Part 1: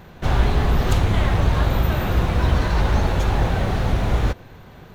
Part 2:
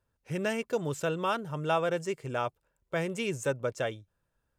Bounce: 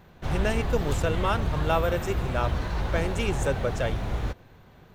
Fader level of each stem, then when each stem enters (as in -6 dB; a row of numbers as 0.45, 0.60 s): -9.5, +2.5 dB; 0.00, 0.00 s